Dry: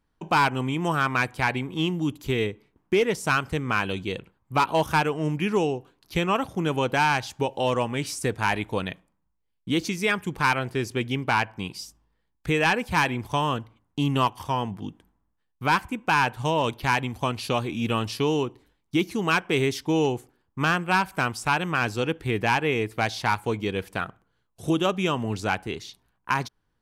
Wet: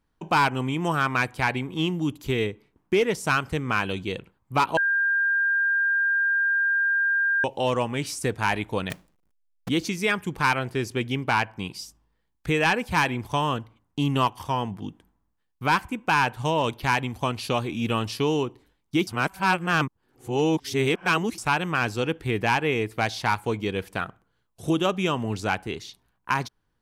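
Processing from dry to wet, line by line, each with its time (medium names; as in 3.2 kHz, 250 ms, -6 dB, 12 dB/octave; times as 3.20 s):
4.77–7.44 s: bleep 1.6 kHz -19.5 dBFS
8.90–9.69 s: square wave that keeps the level
19.07–21.38 s: reverse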